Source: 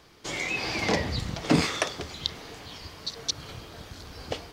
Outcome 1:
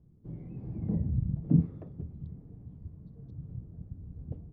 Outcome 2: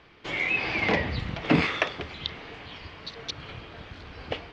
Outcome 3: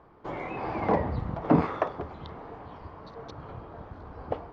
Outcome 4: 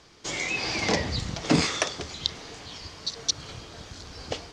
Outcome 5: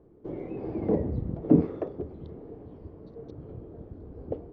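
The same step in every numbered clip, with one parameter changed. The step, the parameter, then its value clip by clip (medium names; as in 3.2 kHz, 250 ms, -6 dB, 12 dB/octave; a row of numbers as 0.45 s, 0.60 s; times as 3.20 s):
resonant low-pass, frequency: 160 Hz, 2.6 kHz, 1 kHz, 6.9 kHz, 400 Hz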